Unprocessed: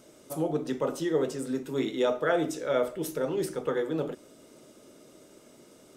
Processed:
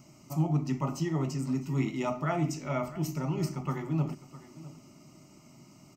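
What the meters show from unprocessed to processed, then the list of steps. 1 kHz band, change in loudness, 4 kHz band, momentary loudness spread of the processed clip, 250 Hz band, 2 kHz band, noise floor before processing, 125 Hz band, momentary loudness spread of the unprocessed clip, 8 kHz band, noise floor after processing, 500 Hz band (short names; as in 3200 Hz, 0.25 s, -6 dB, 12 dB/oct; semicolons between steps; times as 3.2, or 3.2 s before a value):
-0.5 dB, -2.0 dB, -5.5 dB, 16 LU, +0.5 dB, -5.5 dB, -56 dBFS, +11.0 dB, 6 LU, -2.5 dB, -57 dBFS, -9.5 dB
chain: bell 140 Hz +11.5 dB 1 oct; fixed phaser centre 2400 Hz, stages 8; on a send: echo 0.657 s -17.5 dB; on the sum: gain +1.5 dB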